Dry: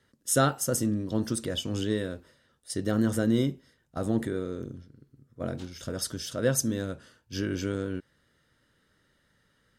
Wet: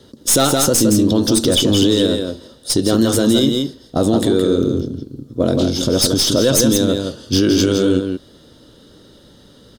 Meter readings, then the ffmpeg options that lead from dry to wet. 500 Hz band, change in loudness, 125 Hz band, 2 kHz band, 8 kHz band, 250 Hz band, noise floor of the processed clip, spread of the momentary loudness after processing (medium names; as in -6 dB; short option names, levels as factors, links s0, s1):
+15.0 dB, +14.5 dB, +11.0 dB, +8.5 dB, +14.5 dB, +14.5 dB, -47 dBFS, 10 LU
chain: -filter_complex "[0:a]firequalizer=gain_entry='entry(150,0);entry(290,7);entry(1900,-14);entry(3500,5);entry(7800,-2)':delay=0.05:min_phase=1,acrossover=split=1000[s0][s1];[s0]acompressor=threshold=0.0251:ratio=6[s2];[s1]aeval=exprs='(tanh(35.5*val(0)+0.3)-tanh(0.3))/35.5':c=same[s3];[s2][s3]amix=inputs=2:normalize=0,aecho=1:1:167:0.501,alimiter=level_in=16.8:limit=0.891:release=50:level=0:latency=1,volume=0.668"